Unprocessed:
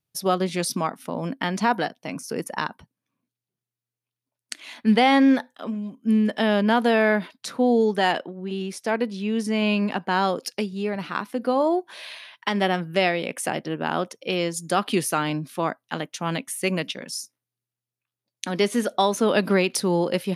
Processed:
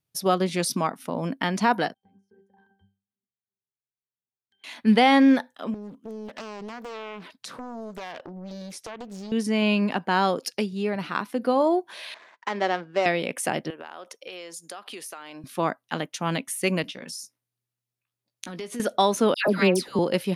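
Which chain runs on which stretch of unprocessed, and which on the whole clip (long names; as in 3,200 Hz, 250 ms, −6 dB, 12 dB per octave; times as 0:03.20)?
0:01.94–0:04.64: downward compressor 12 to 1, threshold −38 dBFS + resonances in every octave G, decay 0.32 s
0:05.74–0:09.32: downward compressor, threshold −34 dBFS + highs frequency-modulated by the lows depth 1 ms
0:12.14–0:13.06: running median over 15 samples + de-essing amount 30% + band-pass filter 370–4,300 Hz
0:13.70–0:15.44: high-pass filter 480 Hz + downward compressor 10 to 1, threshold −35 dBFS
0:16.82–0:18.80: downward compressor, threshold −33 dBFS + double-tracking delay 17 ms −10 dB
0:19.34–0:19.99: de-essing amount 45% + all-pass dispersion lows, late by 124 ms, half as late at 1,600 Hz
whole clip: no processing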